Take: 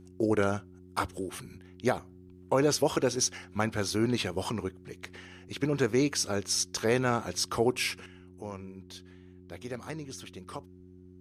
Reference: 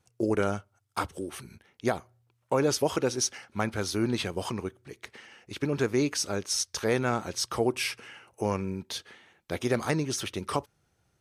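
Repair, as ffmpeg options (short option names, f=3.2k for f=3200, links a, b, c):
-af "bandreject=f=91.1:t=h:w=4,bandreject=f=182.2:t=h:w=4,bandreject=f=273.3:t=h:w=4,bandreject=f=364.4:t=h:w=4,agate=range=-21dB:threshold=-44dB,asetnsamples=n=441:p=0,asendcmd='8.06 volume volume 11.5dB',volume=0dB"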